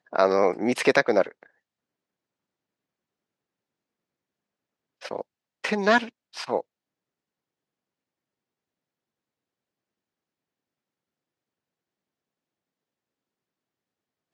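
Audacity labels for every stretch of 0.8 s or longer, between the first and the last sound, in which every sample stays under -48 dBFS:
1.460000	5.010000	silence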